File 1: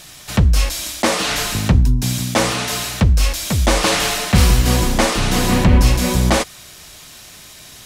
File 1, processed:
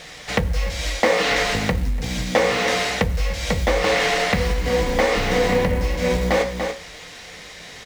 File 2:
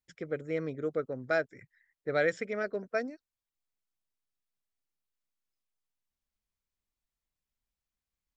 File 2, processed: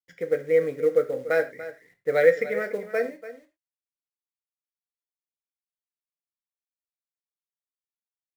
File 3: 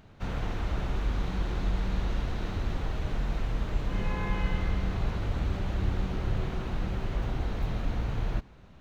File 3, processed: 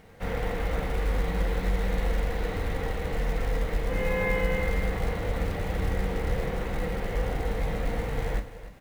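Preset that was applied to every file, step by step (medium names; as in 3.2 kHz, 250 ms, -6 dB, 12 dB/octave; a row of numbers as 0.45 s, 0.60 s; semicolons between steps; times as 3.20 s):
low-pass 5.5 kHz 12 dB/octave; delay 290 ms -14.5 dB; companded quantiser 6-bit; gated-style reverb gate 130 ms falling, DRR 5.5 dB; compression 6:1, threshold -19 dBFS; graphic EQ with 31 bands 125 Hz -8 dB, 500 Hz +12 dB, 800 Hz +4 dB, 2 kHz +10 dB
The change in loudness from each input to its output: -4.5 LU, +9.0 LU, +2.5 LU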